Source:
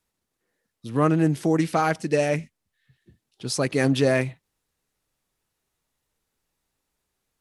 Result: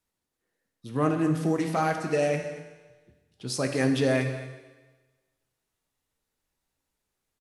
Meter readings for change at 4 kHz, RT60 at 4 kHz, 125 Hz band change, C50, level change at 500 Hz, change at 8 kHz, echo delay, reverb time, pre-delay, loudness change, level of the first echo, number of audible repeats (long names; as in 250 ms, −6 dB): −3.5 dB, 1.2 s, −4.0 dB, 6.5 dB, −3.5 dB, −4.0 dB, 232 ms, 1.3 s, 10 ms, −4.0 dB, −15.5 dB, 1